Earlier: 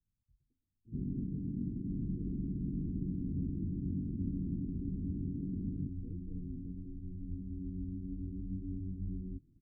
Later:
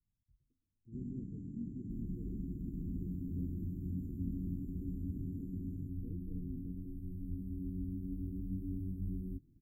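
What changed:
first sound -8.0 dB; master: remove air absorption 470 m

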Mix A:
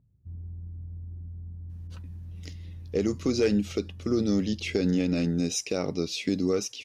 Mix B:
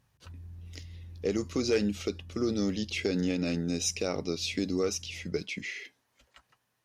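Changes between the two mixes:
speech: entry -1.70 s; master: add low shelf 370 Hz -6.5 dB

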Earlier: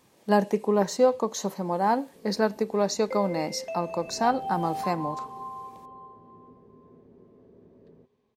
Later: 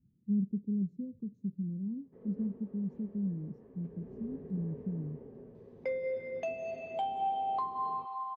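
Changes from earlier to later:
speech: add inverse Chebyshev low-pass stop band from 690 Hz, stop band 60 dB; second sound: entry +2.75 s

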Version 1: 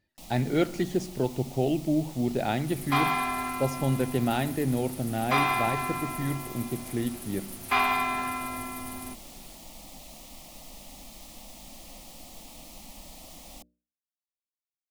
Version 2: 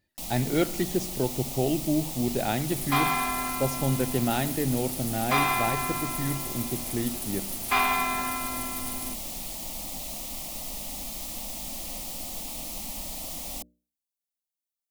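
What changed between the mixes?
first sound +7.0 dB; master: add high shelf 7300 Hz +8 dB

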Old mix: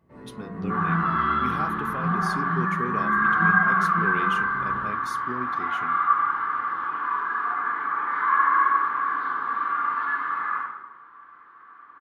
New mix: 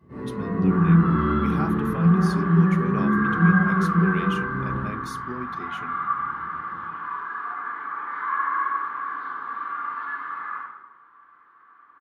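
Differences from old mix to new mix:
first sound: send +10.5 dB; second sound -5.0 dB

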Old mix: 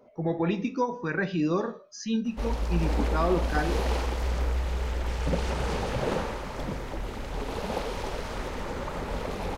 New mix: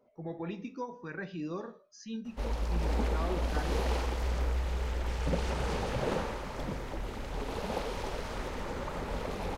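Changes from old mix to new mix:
speech -11.5 dB; background -3.5 dB

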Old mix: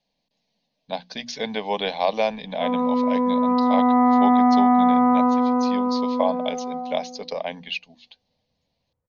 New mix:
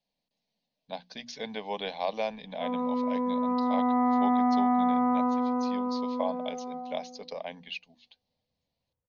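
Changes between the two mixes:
speech -9.0 dB; background -8.0 dB

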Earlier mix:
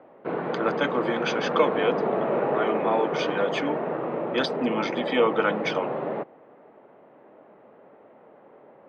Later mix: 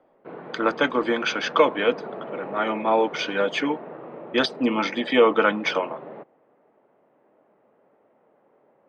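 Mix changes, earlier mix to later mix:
speech +4.5 dB; background -10.0 dB

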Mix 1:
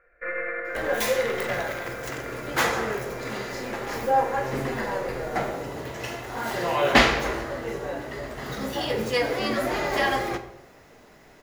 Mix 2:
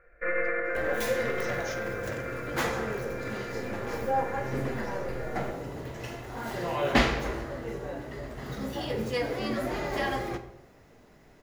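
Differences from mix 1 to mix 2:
speech: unmuted; second sound -8.0 dB; master: add low shelf 340 Hz +8.5 dB

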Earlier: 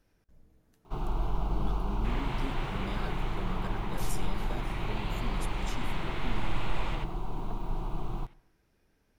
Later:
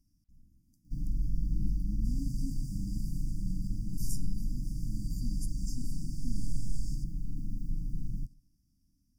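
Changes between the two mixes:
second sound: add tilt +3 dB/oct; master: add brick-wall FIR band-stop 310–4600 Hz

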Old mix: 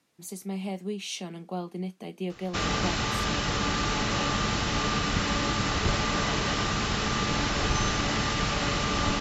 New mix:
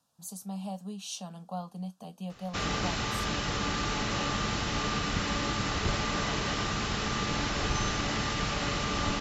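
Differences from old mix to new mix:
speech: add fixed phaser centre 880 Hz, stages 4; background -3.5 dB

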